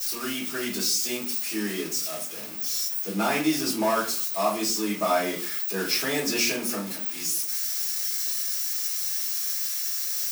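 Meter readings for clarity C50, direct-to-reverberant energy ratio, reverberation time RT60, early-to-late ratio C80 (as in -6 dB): 7.5 dB, -8.5 dB, 0.45 s, 12.5 dB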